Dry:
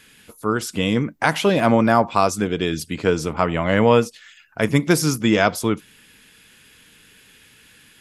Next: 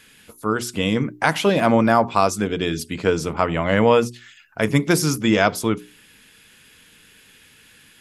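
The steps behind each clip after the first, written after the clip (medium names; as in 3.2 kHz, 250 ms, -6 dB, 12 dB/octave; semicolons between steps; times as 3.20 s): hum notches 60/120/180/240/300/360/420 Hz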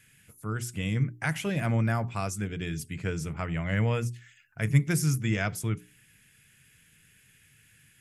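ten-band graphic EQ 125 Hz +12 dB, 250 Hz -7 dB, 500 Hz -7 dB, 1 kHz -10 dB, 2 kHz +4 dB, 4 kHz -10 dB, 8 kHz +3 dB; trim -8 dB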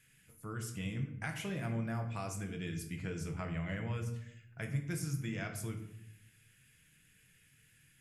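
compression 4:1, threshold -29 dBFS, peak gain reduction 11 dB; simulated room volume 160 m³, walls mixed, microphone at 0.63 m; trim -7.5 dB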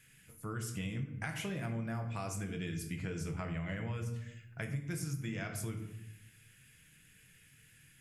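compression 3:1, threshold -40 dBFS, peak gain reduction 8 dB; trim +4 dB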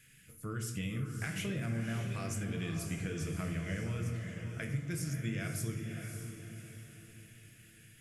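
peaking EQ 870 Hz -12 dB 0.59 oct; echo that smears into a reverb 584 ms, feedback 41%, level -6.5 dB; trim +1.5 dB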